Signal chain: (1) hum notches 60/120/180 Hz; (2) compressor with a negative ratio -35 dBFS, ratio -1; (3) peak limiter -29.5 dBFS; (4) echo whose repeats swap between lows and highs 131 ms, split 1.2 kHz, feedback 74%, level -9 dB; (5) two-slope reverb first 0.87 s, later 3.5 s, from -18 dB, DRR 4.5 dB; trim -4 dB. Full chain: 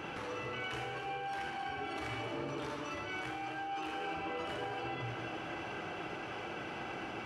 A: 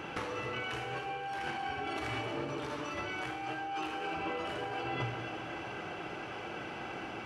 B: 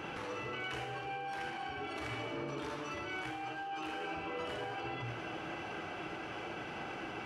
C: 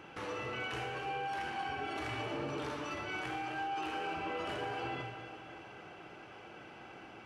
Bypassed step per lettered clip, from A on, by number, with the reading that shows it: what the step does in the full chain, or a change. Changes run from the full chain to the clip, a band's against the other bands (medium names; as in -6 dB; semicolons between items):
3, mean gain reduction 1.5 dB; 4, echo-to-direct -3.0 dB to -4.5 dB; 2, momentary loudness spread change +11 LU